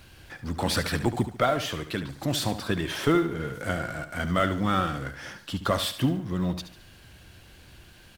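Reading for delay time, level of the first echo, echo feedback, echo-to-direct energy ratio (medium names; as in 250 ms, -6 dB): 72 ms, -11.5 dB, 39%, -11.0 dB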